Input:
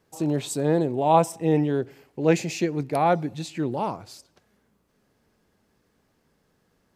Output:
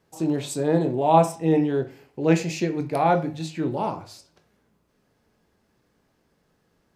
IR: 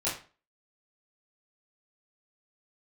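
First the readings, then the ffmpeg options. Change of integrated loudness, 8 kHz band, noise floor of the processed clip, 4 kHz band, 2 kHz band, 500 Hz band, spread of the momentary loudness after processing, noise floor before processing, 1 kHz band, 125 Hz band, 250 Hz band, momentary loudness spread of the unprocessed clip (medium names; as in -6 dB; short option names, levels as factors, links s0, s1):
+1.0 dB, -1.5 dB, -69 dBFS, 0.0 dB, +0.5 dB, +0.5 dB, 10 LU, -69 dBFS, +1.0 dB, +1.0 dB, +1.5 dB, 10 LU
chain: -filter_complex "[0:a]asplit=2[s0][s1];[s1]lowpass=8000[s2];[1:a]atrim=start_sample=2205[s3];[s2][s3]afir=irnorm=-1:irlink=0,volume=0.266[s4];[s0][s4]amix=inputs=2:normalize=0,volume=0.794"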